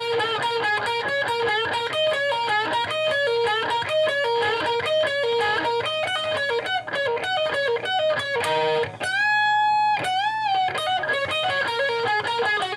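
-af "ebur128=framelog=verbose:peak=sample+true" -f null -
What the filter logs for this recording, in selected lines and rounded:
Integrated loudness:
  I:         -22.3 LUFS
  Threshold: -32.3 LUFS
Loudness range:
  LRA:         1.6 LU
  Threshold: -42.2 LUFS
  LRA low:   -23.1 LUFS
  LRA high:  -21.5 LUFS
Sample peak:
  Peak:      -11.5 dBFS
True peak:
  Peak:      -11.5 dBFS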